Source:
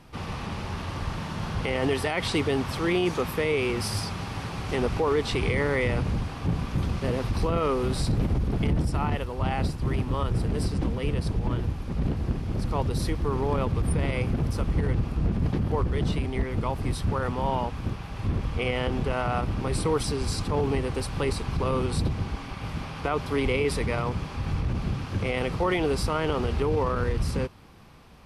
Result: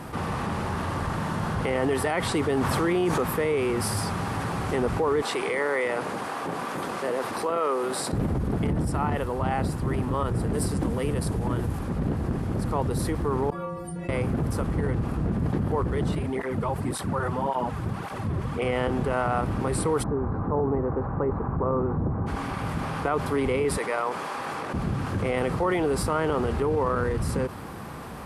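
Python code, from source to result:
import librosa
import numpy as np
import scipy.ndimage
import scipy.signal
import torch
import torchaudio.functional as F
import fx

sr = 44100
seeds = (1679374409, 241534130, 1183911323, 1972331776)

y = fx.env_flatten(x, sr, amount_pct=70, at=(2.57, 3.18))
y = fx.highpass(y, sr, hz=430.0, slope=12, at=(5.22, 8.13))
y = fx.high_shelf(y, sr, hz=6500.0, db=9.5, at=(10.53, 11.79))
y = fx.stiff_resonator(y, sr, f0_hz=170.0, decay_s=0.71, stiffness=0.008, at=(13.5, 14.09))
y = fx.flanger_cancel(y, sr, hz=1.8, depth_ms=4.6, at=(16.15, 18.62))
y = fx.lowpass(y, sr, hz=1300.0, slope=24, at=(20.02, 22.26), fade=0.02)
y = fx.highpass(y, sr, hz=500.0, slope=12, at=(23.77, 24.74))
y = fx.highpass(y, sr, hz=130.0, slope=6)
y = fx.band_shelf(y, sr, hz=3700.0, db=-8.0, octaves=1.7)
y = fx.env_flatten(y, sr, amount_pct=50)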